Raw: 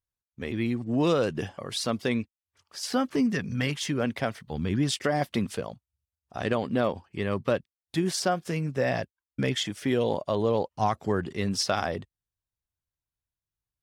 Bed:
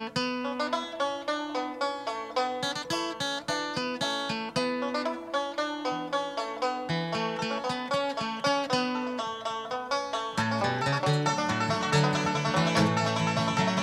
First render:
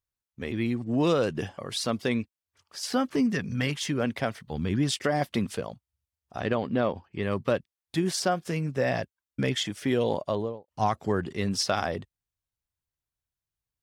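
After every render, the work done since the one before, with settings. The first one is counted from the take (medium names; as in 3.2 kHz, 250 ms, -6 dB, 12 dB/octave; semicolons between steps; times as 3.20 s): 6.40–7.23 s: distance through air 100 m; 10.24–10.68 s: studio fade out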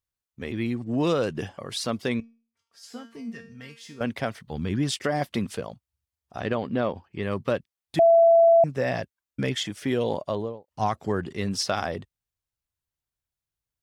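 2.20–4.01 s: feedback comb 230 Hz, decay 0.4 s, mix 90%; 7.99–8.64 s: bleep 669 Hz -12.5 dBFS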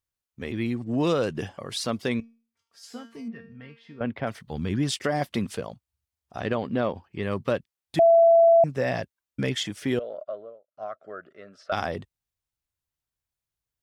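3.28–4.27 s: distance through air 390 m; 9.99–11.72 s: two resonant band-passes 910 Hz, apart 1.1 oct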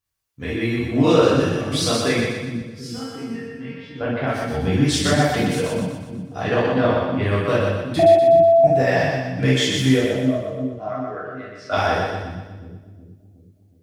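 two-band feedback delay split 310 Hz, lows 367 ms, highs 122 ms, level -3 dB; gated-style reverb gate 90 ms flat, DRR -7 dB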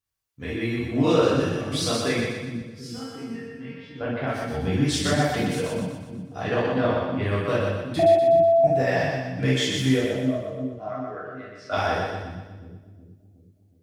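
trim -4.5 dB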